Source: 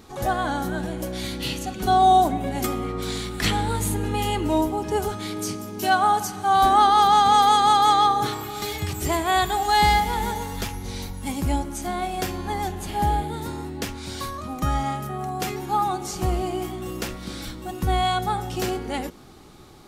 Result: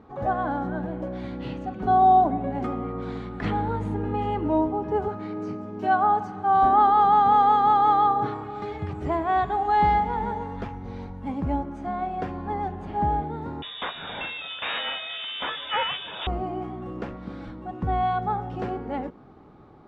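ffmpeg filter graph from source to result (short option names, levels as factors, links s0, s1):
-filter_complex "[0:a]asettb=1/sr,asplit=3[s0][s1][s2];[s0]atrim=end=5.084[s3];[s1]atrim=start=5.08:end=5.63,asetpts=PTS-STARTPTS,afade=t=in:d=0.004:c=qsin,afade=t=out:st=0.546:d=0.004:c=qsin,highpass=88,acrossover=split=8000[s4][s5];[s5]acompressor=threshold=0.00355:ratio=4:attack=1:release=60[s6];[s4][s6]amix=inputs=2:normalize=0,bandreject=f=3400:w=7.8[s7];[s2]atrim=start=5.626[s8];[s3][s7]acrossfade=d=0.004:c1=hsin:c2=qsin[s9];[s9][s8]acrossfade=d=0.004:c1=qsin:c2=hsin,asettb=1/sr,asplit=3[s10][s11][s12];[s10]atrim=end=13.624[s13];[s11]atrim=start=13.62:end=16.27,asetpts=PTS-STARTPTS,afade=t=in:d=0.004:c=qsin,afade=t=out:st=2.646:d=0.004:c=qsin,aeval=exprs='0.266*sin(PI/2*3.16*val(0)/0.266)':c=same,lowpass=f=3200:t=q:w=0.5098,lowpass=f=3200:t=q:w=0.6013,lowpass=f=3200:t=q:w=0.9,lowpass=f=3200:t=q:w=2.563,afreqshift=-3800[s14];[s12]atrim=start=16.266[s15];[s13][s14]acrossfade=d=0.004:c1=hsin:c2=qsin[s16];[s16][s15]acrossfade=d=0.004:c1=qsin:c2=hsin,lowpass=1200,lowshelf=f=63:g=-11,bandreject=f=360:w=12"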